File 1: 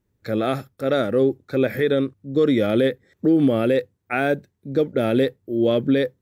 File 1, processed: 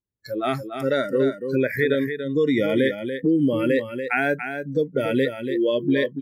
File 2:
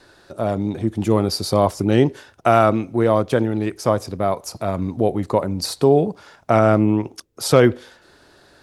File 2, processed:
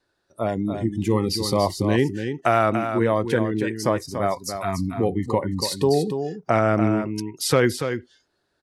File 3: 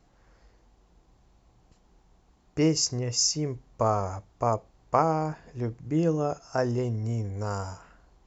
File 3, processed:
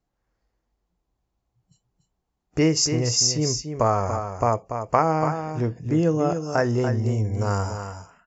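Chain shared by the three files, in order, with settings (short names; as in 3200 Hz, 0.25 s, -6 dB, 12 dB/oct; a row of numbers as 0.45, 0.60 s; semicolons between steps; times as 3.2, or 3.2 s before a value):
spectral noise reduction 24 dB; dynamic EQ 1900 Hz, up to +7 dB, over -43 dBFS, Q 2; compressor 1.5:1, threshold -30 dBFS; on a send: echo 0.287 s -8 dB; on the sum: match loudness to -23 LUFS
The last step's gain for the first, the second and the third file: +3.5, +2.0, +7.5 dB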